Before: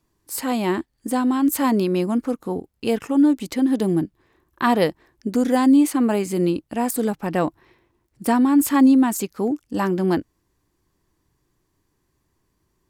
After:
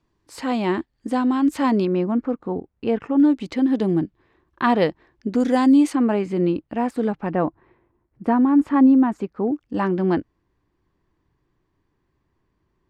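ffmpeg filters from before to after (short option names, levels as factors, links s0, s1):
-af "asetnsamples=n=441:p=0,asendcmd='1.85 lowpass f 2000;3.2 lowpass f 3800;5.4 lowpass f 6200;5.95 lowpass f 2600;7.31 lowpass f 1500;9.61 lowpass f 2900',lowpass=4300"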